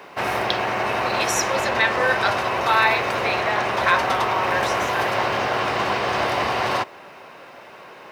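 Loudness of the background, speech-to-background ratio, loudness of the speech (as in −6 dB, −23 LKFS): −22.5 LKFS, −1.5 dB, −24.0 LKFS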